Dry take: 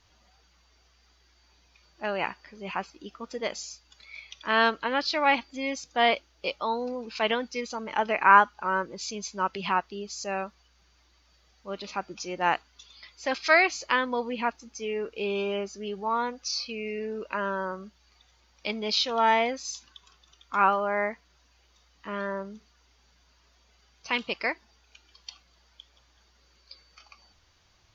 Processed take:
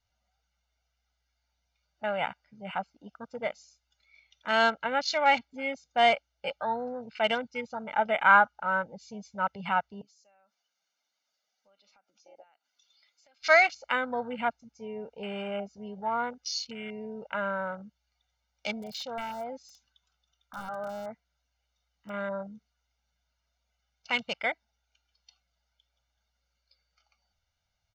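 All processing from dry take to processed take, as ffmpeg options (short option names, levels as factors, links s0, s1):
-filter_complex "[0:a]asettb=1/sr,asplit=3[s0][s1][s2];[s0]atrim=end=10.014[s3];[s1]atrim=start=10.01:end=13.42,asetpts=PTS-STARTPTS,afade=t=in:d=0.004:c=qsin,afade=t=out:st=3.406:d=0.004:c=qsin,highpass=f=240:w=0.5412,highpass=f=240:w=1.3066,highshelf=f=6700:g=10,acompressor=threshold=0.00708:ratio=12:attack=3.2:release=140:knee=1:detection=peak[s4];[s2]atrim=start=13.416[s5];[s3][s4]acrossfade=d=0.004:c1=hsin:c2=qsin[s6];[s6][s5]acrossfade=d=0.004:c1=qsin:c2=hsin,asettb=1/sr,asplit=3[s7][s8][s9];[s7]atrim=end=18.764[s10];[s8]atrim=start=18.76:end=22.14,asetpts=PTS-STARTPTS,afade=t=in:d=0.004:c=qsin,afade=t=out:st=3.376:d=0.004:c=qsin,acompressor=threshold=0.0316:ratio=10:attack=3.2:release=140:knee=1:detection=peak,aeval=exprs='(mod(21.1*val(0)+1,2)-1)/21.1':c=same[s11];[s9]atrim=start=22.136[s12];[s10][s11]acrossfade=d=0.004:c1=hsin:c2=qsin[s13];[s13][s12]acrossfade=d=0.004:c1=qsin:c2=hsin,afwtdn=0.0141,aecho=1:1:1.4:0.78,volume=0.708"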